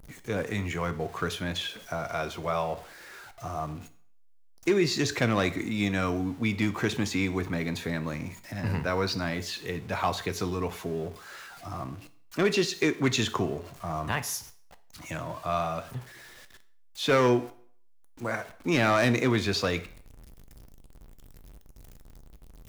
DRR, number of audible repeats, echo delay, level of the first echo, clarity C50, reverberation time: 11.0 dB, none, none, none, 16.0 dB, 0.55 s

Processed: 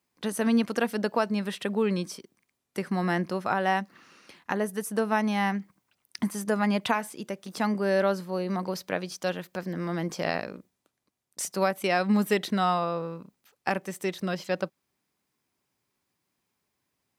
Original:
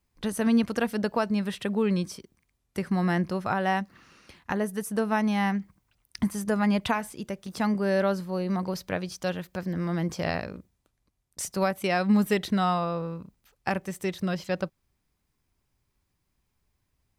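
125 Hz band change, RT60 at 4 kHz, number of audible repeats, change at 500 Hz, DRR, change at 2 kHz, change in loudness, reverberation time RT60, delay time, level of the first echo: -3.0 dB, none, none, +1.0 dB, none, +1.0 dB, -0.5 dB, none, none, none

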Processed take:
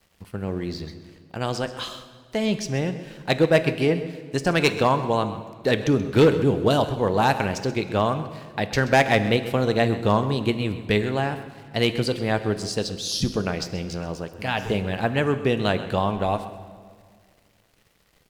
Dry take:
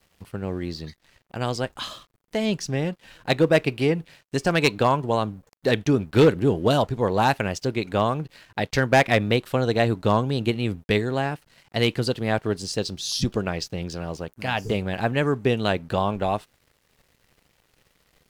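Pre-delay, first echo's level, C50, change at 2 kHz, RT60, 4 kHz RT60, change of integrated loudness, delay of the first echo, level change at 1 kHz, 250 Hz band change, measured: 4 ms, -15.0 dB, 11.0 dB, +0.5 dB, 1.9 s, 1.5 s, +0.5 dB, 0.13 s, +0.5 dB, +0.5 dB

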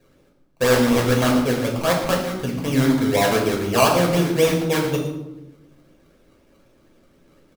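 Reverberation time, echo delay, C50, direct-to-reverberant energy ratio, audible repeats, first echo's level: 1.0 s, 0.116 s, 5.0 dB, -1.0 dB, 1, -12.5 dB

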